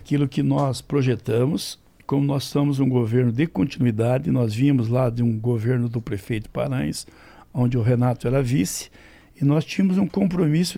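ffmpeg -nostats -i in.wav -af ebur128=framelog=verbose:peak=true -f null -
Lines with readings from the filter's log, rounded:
Integrated loudness:
  I:         -22.0 LUFS
  Threshold: -32.4 LUFS
Loudness range:
  LRA:         2.9 LU
  Threshold: -42.4 LUFS
  LRA low:   -24.0 LUFS
  LRA high:  -21.1 LUFS
True peak:
  Peak:       -8.5 dBFS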